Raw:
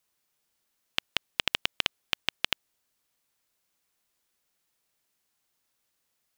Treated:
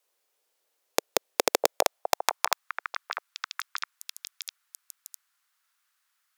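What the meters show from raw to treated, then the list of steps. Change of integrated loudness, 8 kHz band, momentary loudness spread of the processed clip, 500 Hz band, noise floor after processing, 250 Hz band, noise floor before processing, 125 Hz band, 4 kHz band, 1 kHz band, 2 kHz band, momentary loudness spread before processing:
+1.0 dB, +14.0 dB, 19 LU, +17.5 dB, -77 dBFS, +7.0 dB, -78 dBFS, no reading, -2.5 dB, +13.0 dB, +1.0 dB, 6 LU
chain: Chebyshev shaper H 3 -9 dB, 7 -18 dB, 8 -8 dB, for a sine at -3.5 dBFS; repeats whose band climbs or falls 654 ms, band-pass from 560 Hz, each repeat 1.4 oct, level -2 dB; high-pass sweep 470 Hz -> 1.3 kHz, 1.56–2.73 s; trim +1.5 dB

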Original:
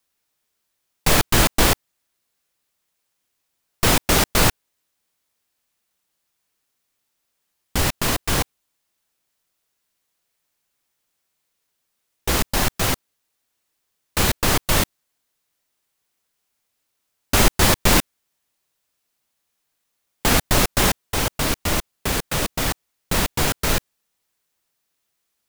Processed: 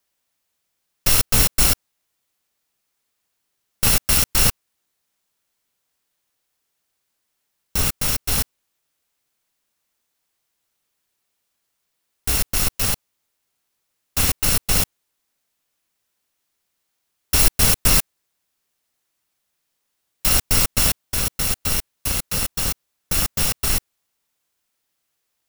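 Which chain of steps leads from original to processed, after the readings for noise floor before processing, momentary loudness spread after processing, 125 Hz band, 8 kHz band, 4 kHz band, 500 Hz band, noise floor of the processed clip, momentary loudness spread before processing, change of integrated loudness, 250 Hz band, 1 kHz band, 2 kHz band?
-75 dBFS, 9 LU, -2.0 dB, +2.5 dB, -1.0 dB, -8.5 dB, -75 dBFS, 9 LU, +1.5 dB, -6.5 dB, -7.5 dB, -4.5 dB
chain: bit-reversed sample order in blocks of 128 samples

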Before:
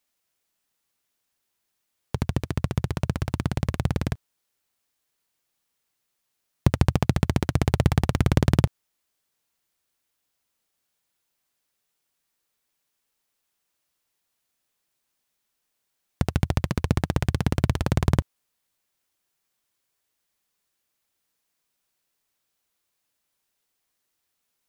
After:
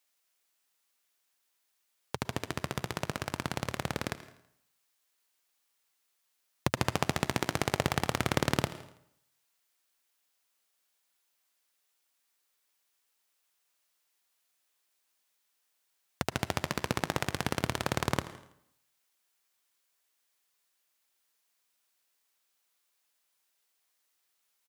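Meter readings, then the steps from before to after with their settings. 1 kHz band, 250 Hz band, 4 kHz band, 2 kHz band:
-0.5 dB, -9.0 dB, +1.0 dB, +0.5 dB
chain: high-pass 680 Hz 6 dB/octave; feedback delay 82 ms, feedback 46%, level -16 dB; plate-style reverb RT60 0.71 s, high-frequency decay 0.8×, pre-delay 100 ms, DRR 17 dB; trim +1 dB

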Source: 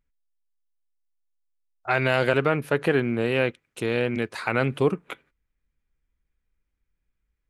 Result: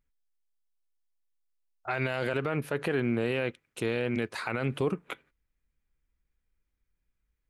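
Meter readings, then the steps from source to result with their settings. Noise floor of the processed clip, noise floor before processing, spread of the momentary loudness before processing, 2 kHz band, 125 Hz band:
-81 dBFS, -79 dBFS, 11 LU, -7.5 dB, -5.5 dB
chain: peak limiter -16 dBFS, peak gain reduction 10 dB; trim -2 dB

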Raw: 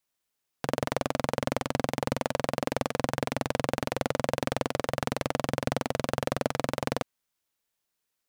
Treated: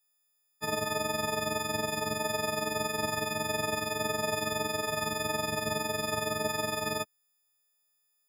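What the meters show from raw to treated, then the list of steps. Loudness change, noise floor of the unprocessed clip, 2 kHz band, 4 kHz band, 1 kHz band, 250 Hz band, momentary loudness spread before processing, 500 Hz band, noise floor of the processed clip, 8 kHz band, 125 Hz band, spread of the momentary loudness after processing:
-0.5 dB, -82 dBFS, +2.5 dB, +3.5 dB, -0.5 dB, -5.0 dB, 2 LU, -2.0 dB, -75 dBFS, +5.5 dB, -6.0 dB, 1 LU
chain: partials quantised in pitch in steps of 6 st; tone controls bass +2 dB, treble -3 dB; trim -6 dB

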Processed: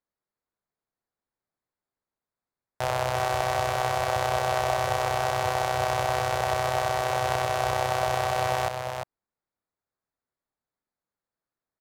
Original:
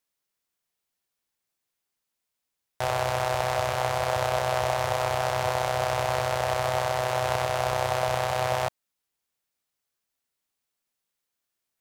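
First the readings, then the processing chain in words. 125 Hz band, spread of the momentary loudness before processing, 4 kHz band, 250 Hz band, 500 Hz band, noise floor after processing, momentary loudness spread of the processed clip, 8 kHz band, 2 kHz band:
-0.5 dB, 1 LU, 0.0 dB, +1.0 dB, -1.0 dB, under -85 dBFS, 3 LU, 0.0 dB, +0.5 dB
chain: local Wiener filter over 15 samples; on a send: delay 350 ms -6 dB

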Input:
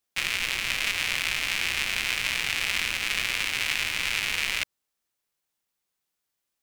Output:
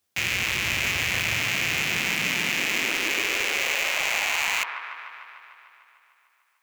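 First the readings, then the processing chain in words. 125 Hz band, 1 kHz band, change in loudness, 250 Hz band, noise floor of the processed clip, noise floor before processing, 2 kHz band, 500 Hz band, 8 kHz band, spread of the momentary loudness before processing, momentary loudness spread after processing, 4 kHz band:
+8.5 dB, +5.5 dB, +2.5 dB, +9.5 dB, -68 dBFS, -82 dBFS, +3.0 dB, +9.0 dB, +3.0 dB, 1 LU, 7 LU, +0.5 dB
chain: feedback echo behind a low-pass 149 ms, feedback 71%, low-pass 1.1 kHz, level -5 dB; high-pass sweep 82 Hz -> 1.1 kHz, 1.16–4.80 s; overload inside the chain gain 22.5 dB; trim +6 dB

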